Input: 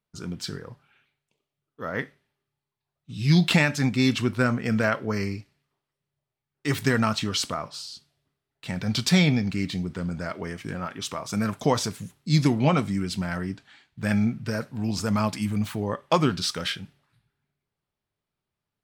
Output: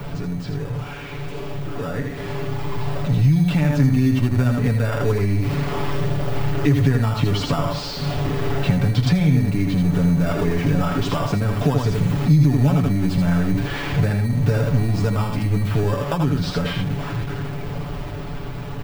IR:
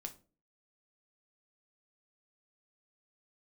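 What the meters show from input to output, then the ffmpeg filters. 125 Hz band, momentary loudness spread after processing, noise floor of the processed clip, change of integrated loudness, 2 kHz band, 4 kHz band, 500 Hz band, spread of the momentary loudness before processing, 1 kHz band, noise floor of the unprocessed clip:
+10.0 dB, 12 LU, -30 dBFS, +5.0 dB, -0.5 dB, -1.5 dB, +5.0 dB, 14 LU, +2.5 dB, under -85 dBFS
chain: -filter_complex "[0:a]aeval=exprs='val(0)+0.5*0.0316*sgn(val(0))':c=same,equalizer=f=8.5k:t=o:w=2.6:g=-14,aecho=1:1:80:0.531,asplit=2[a][b];[b]acrusher=samples=21:mix=1:aa=0.000001,volume=-5.5dB[c];[a][c]amix=inputs=2:normalize=0,alimiter=limit=-13.5dB:level=0:latency=1:release=229,acrossover=split=110|6100[d][e][f];[d]acompressor=threshold=-36dB:ratio=4[g];[e]acompressor=threshold=-31dB:ratio=4[h];[f]acompressor=threshold=-55dB:ratio=4[i];[g][h][i]amix=inputs=3:normalize=0,lowshelf=f=88:g=8.5,dynaudnorm=f=490:g=11:m=8dB,aecho=1:1:7:0.68,volume=1dB"

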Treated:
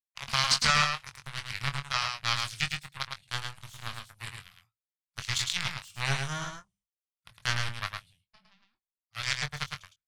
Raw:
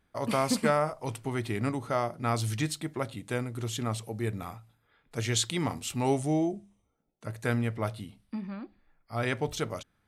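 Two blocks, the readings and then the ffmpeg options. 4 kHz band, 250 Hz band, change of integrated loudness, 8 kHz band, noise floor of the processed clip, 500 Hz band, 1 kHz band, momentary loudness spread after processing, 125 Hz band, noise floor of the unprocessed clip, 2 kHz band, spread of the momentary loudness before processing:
+8.5 dB, -15.0 dB, +0.5 dB, +1.0 dB, under -85 dBFS, -16.0 dB, -0.5 dB, 17 LU, -5.5 dB, -74 dBFS, +6.0 dB, 14 LU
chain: -filter_complex "[0:a]aemphasis=mode=reproduction:type=cd,bandreject=f=3.9k:w=14,aeval=exprs='0.251*(cos(1*acos(clip(val(0)/0.251,-1,1)))-cos(1*PI/2))+0.0355*(cos(2*acos(clip(val(0)/0.251,-1,1)))-cos(2*PI/2))+0.00398*(cos(4*acos(clip(val(0)/0.251,-1,1)))-cos(4*PI/2))+0.0398*(cos(7*acos(clip(val(0)/0.251,-1,1)))-cos(7*PI/2))':c=same,agate=range=-33dB:threshold=-58dB:ratio=3:detection=peak,firequalizer=gain_entry='entry(140,0);entry(270,-25);entry(1100,0);entry(3900,13)':delay=0.05:min_phase=1,acrossover=split=7400[a][b];[b]acompressor=threshold=-51dB:ratio=4:attack=1:release=60[c];[a][c]amix=inputs=2:normalize=0,asplit=2[d][e];[e]adelay=22,volume=-9dB[f];[d][f]amix=inputs=2:normalize=0,asplit=2[g][h];[h]aecho=0:1:108:0.596[i];[g][i]amix=inputs=2:normalize=0,volume=1.5dB"

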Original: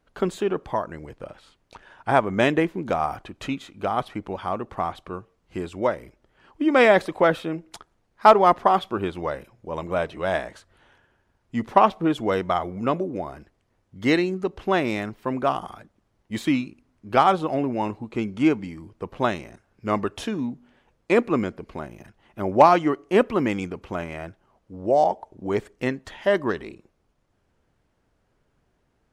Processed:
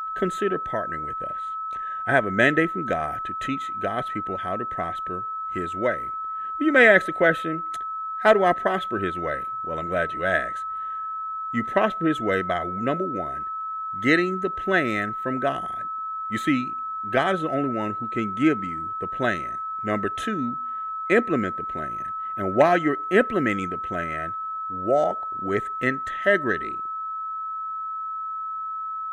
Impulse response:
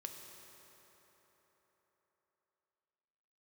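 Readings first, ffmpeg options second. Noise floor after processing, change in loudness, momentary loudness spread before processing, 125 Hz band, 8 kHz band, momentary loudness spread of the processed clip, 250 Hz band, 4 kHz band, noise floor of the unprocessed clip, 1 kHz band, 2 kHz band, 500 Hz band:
-31 dBFS, -1.0 dB, 18 LU, -1.0 dB, n/a, 11 LU, -1.0 dB, -1.5 dB, -70 dBFS, -1.0 dB, +6.5 dB, -1.0 dB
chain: -af "superequalizer=9b=0.316:10b=0.398:11b=2.82:14b=0.282,aeval=exprs='val(0)+0.0447*sin(2*PI*1300*n/s)':c=same,volume=-1dB"

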